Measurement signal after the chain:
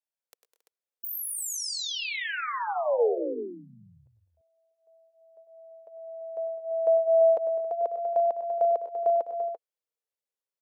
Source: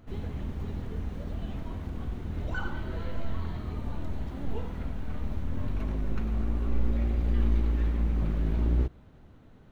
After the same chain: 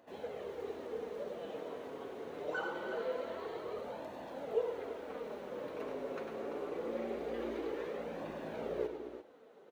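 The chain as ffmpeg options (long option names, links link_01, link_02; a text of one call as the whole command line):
ffmpeg -i in.wav -af "highpass=frequency=470:width_type=q:width=4.1,aecho=1:1:100|117|204|229|274|340:0.282|0.141|0.2|0.106|0.133|0.335,flanger=delay=1.1:depth=6.2:regen=-36:speed=0.24:shape=sinusoidal" out.wav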